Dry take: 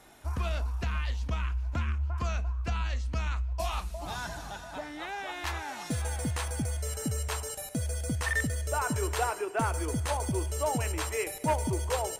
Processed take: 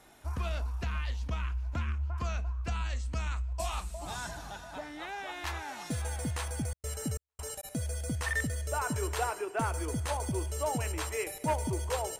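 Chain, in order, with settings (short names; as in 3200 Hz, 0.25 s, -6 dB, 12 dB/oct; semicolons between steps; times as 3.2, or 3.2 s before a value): 2.68–4.31 bell 8000 Hz +10.5 dB 0.39 oct; 6.68–7.63 step gate "x..xx.xx" 136 bpm -60 dB; gain -2.5 dB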